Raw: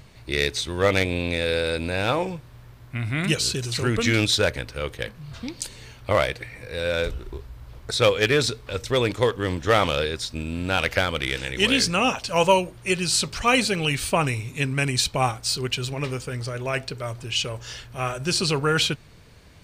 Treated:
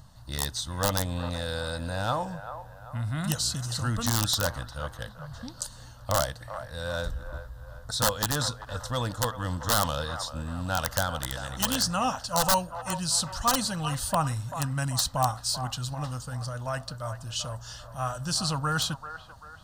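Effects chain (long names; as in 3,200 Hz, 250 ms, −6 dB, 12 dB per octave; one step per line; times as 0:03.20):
tape wow and flutter 20 cents
wrap-around overflow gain 10 dB
phaser with its sweep stopped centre 960 Hz, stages 4
on a send: delay with a band-pass on its return 389 ms, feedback 43%, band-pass 1,000 Hz, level −10 dB
on the sum: level −1.5 dB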